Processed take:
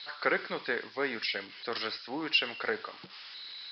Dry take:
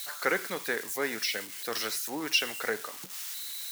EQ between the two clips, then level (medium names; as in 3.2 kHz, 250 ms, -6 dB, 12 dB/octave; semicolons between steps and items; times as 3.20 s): Chebyshev low-pass 5.1 kHz, order 8; 0.0 dB